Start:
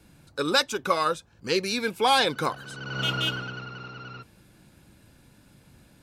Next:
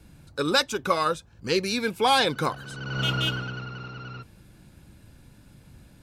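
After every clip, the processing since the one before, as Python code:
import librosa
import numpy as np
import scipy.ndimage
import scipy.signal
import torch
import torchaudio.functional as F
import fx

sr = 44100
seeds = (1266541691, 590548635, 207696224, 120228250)

y = fx.low_shelf(x, sr, hz=130.0, db=9.5)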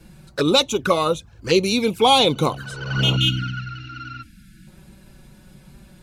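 y = fx.env_flanger(x, sr, rest_ms=6.5, full_db=-23.5)
y = fx.spec_box(y, sr, start_s=3.16, length_s=1.51, low_hz=330.0, high_hz=1300.0, gain_db=-26)
y = y * 10.0 ** (8.5 / 20.0)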